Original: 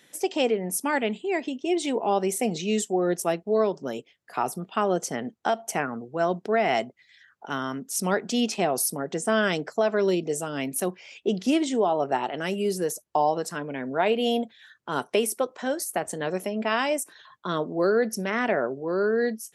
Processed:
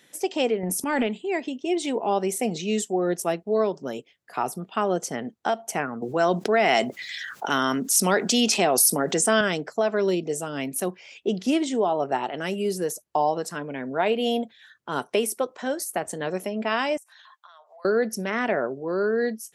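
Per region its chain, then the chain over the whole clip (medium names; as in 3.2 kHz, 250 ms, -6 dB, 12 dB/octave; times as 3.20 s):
0.63–1.07 s: bass shelf 400 Hz +4.5 dB + transient shaper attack -6 dB, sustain +9 dB
6.02–9.41 s: high-pass 160 Hz + treble shelf 2.4 kHz +7 dB + level flattener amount 50%
16.97–17.85 s: steep high-pass 670 Hz 48 dB/octave + compression 12:1, threshold -46 dBFS
whole clip: none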